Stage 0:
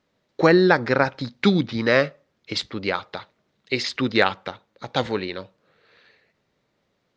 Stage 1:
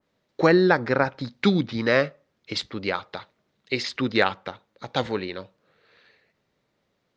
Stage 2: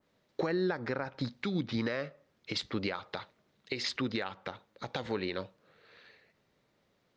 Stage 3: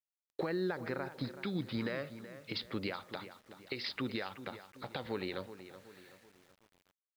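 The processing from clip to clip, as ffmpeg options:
-af "adynamicequalizer=threshold=0.0224:dfrequency=2200:dqfactor=0.7:tfrequency=2200:tqfactor=0.7:attack=5:release=100:ratio=0.375:range=3:mode=cutabove:tftype=highshelf,volume=0.794"
-af "acompressor=threshold=0.0447:ratio=5,alimiter=limit=0.0841:level=0:latency=1:release=125"
-filter_complex "[0:a]asplit=2[s0][s1];[s1]adelay=376,lowpass=f=3500:p=1,volume=0.237,asplit=2[s2][s3];[s3]adelay=376,lowpass=f=3500:p=1,volume=0.45,asplit=2[s4][s5];[s5]adelay=376,lowpass=f=3500:p=1,volume=0.45,asplit=2[s6][s7];[s7]adelay=376,lowpass=f=3500:p=1,volume=0.45[s8];[s0][s2][s4][s6][s8]amix=inputs=5:normalize=0,aresample=11025,aresample=44100,acrusher=bits=9:mix=0:aa=0.000001,volume=0.631"

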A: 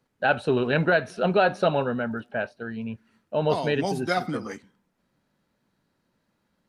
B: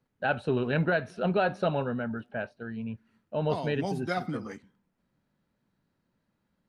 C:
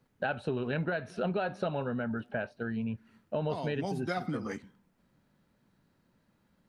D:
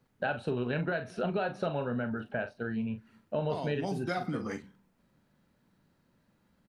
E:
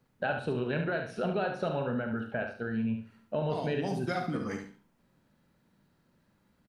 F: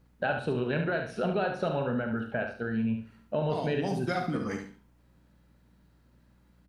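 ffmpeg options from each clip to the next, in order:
-af "bass=f=250:g=5,treble=f=4000:g=-4,volume=0.501"
-af "acompressor=threshold=0.0141:ratio=4,volume=2"
-filter_complex "[0:a]asplit=2[s0][s1];[s1]adelay=41,volume=0.335[s2];[s0][s2]amix=inputs=2:normalize=0"
-af "aecho=1:1:71|142|213:0.447|0.121|0.0326"
-af "aeval=exprs='val(0)+0.000631*(sin(2*PI*60*n/s)+sin(2*PI*2*60*n/s)/2+sin(2*PI*3*60*n/s)/3+sin(2*PI*4*60*n/s)/4+sin(2*PI*5*60*n/s)/5)':c=same,volume=1.26"

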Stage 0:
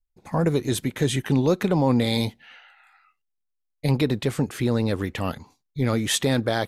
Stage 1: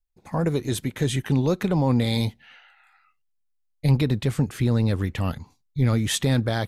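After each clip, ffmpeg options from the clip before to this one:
-af "asubboost=boost=2.5:cutoff=210,volume=0.794"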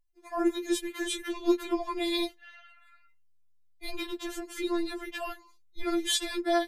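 -af "afftfilt=real='re*4*eq(mod(b,16),0)':imag='im*4*eq(mod(b,16),0)':win_size=2048:overlap=0.75"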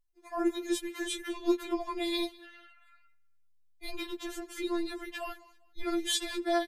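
-af "aecho=1:1:199|398:0.0708|0.0248,volume=0.75"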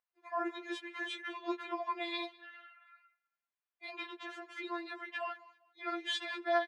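-af "highpass=790,lowpass=2200,volume=1.5"

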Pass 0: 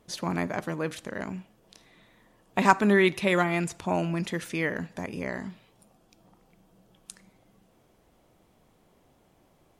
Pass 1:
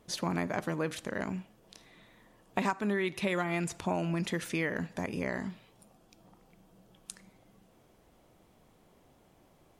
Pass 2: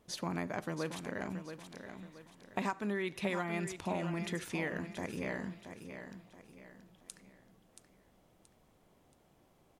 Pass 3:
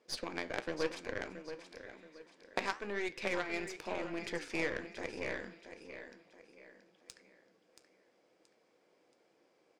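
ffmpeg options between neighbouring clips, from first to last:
-af "acompressor=threshold=0.0447:ratio=8"
-af "aecho=1:1:677|1354|2031|2708:0.355|0.131|0.0486|0.018,volume=0.562"
-af "highpass=290,equalizer=f=330:t=q:w=4:g=6,equalizer=f=490:t=q:w=4:g=10,equalizer=f=1600:t=q:w=4:g=6,equalizer=f=2300:t=q:w=4:g=8,equalizer=f=4900:t=q:w=4:g=10,lowpass=f=8500:w=0.5412,lowpass=f=8500:w=1.3066,aeval=exprs='0.158*(cos(1*acos(clip(val(0)/0.158,-1,1)))-cos(1*PI/2))+0.0447*(cos(3*acos(clip(val(0)/0.158,-1,1)))-cos(3*PI/2))+0.01*(cos(5*acos(clip(val(0)/0.158,-1,1)))-cos(5*PI/2))+0.00126*(cos(7*acos(clip(val(0)/0.158,-1,1)))-cos(7*PI/2))+0.00631*(cos(8*acos(clip(val(0)/0.158,-1,1)))-cos(8*PI/2))':c=same,flanger=delay=7.8:depth=9.5:regen=-73:speed=0.98:shape=sinusoidal,volume=2.11"

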